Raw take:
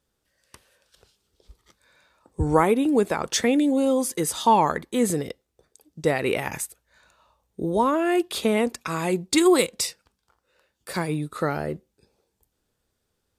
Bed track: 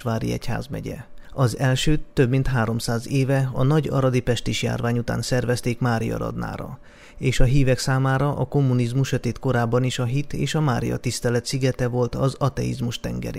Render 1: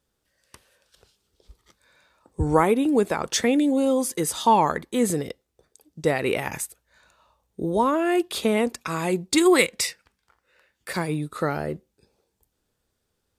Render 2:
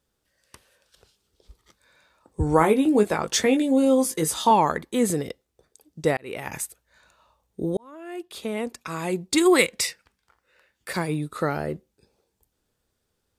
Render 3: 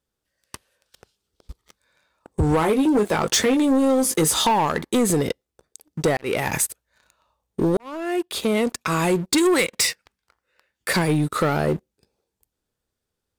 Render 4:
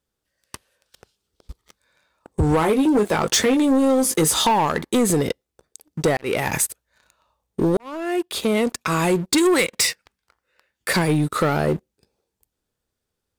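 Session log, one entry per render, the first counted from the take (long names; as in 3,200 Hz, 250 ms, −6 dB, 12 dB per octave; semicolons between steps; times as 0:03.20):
0:09.52–0:10.93: parametric band 2,000 Hz +9.5 dB 0.83 octaves
0:02.59–0:04.51: double-tracking delay 19 ms −6 dB; 0:06.17–0:06.63: fade in; 0:07.77–0:09.57: fade in
downward compressor 6 to 1, threshold −24 dBFS, peak gain reduction 11 dB; leveller curve on the samples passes 3
level +1 dB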